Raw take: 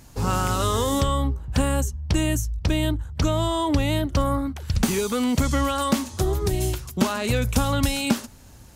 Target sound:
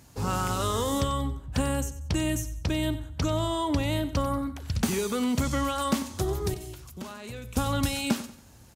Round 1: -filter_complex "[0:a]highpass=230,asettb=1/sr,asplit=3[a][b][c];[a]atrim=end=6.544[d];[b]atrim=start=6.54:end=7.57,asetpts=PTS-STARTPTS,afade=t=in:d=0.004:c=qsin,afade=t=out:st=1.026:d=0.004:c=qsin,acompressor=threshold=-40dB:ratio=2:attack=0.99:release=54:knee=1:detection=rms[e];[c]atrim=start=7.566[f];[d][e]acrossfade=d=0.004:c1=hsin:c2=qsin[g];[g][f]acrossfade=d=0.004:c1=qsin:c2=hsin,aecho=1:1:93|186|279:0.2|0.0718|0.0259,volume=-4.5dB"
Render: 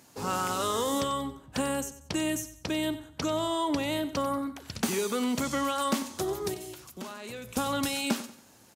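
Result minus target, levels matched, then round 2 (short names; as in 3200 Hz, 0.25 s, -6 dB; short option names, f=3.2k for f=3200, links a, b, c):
125 Hz band -9.5 dB
-filter_complex "[0:a]highpass=61,asettb=1/sr,asplit=3[a][b][c];[a]atrim=end=6.544[d];[b]atrim=start=6.54:end=7.57,asetpts=PTS-STARTPTS,afade=t=in:d=0.004:c=qsin,afade=t=out:st=1.026:d=0.004:c=qsin,acompressor=threshold=-40dB:ratio=2:attack=0.99:release=54:knee=1:detection=rms[e];[c]atrim=start=7.566[f];[d][e]acrossfade=d=0.004:c1=hsin:c2=qsin[g];[g][f]acrossfade=d=0.004:c1=qsin:c2=hsin,aecho=1:1:93|186|279:0.2|0.0718|0.0259,volume=-4.5dB"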